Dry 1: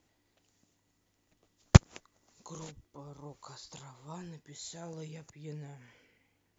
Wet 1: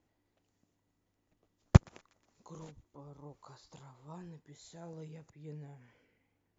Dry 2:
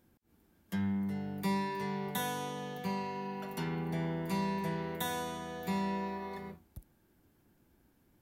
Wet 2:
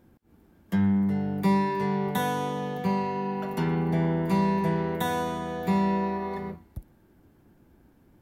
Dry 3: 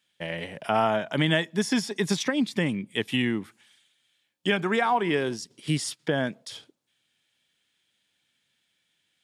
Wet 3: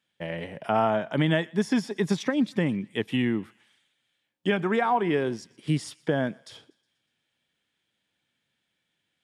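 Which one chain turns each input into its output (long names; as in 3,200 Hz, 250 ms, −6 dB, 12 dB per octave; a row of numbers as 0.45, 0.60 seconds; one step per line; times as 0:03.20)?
high-shelf EQ 2,200 Hz −10.5 dB
feedback echo with a high-pass in the loop 121 ms, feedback 59%, high-pass 1,100 Hz, level −23.5 dB
loudness normalisation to −27 LKFS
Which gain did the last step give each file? −3.0, +10.5, +1.0 decibels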